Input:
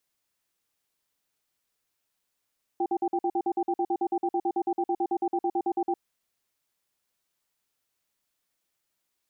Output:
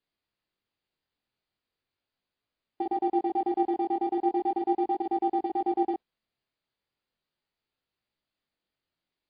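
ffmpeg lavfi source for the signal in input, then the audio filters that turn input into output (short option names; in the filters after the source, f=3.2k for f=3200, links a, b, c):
-f lavfi -i "aevalsrc='0.0501*(sin(2*PI*349*t)+sin(2*PI*785*t))*clip(min(mod(t,0.11),0.06-mod(t,0.11))/0.005,0,1)':d=3.18:s=44100"
-filter_complex "[0:a]asplit=2[a][b];[b]adynamicsmooth=sensitivity=6.5:basefreq=750,volume=-2dB[c];[a][c]amix=inputs=2:normalize=0,flanger=delay=18:depth=5.9:speed=0.38" -ar 11025 -c:a libmp3lame -b:a 40k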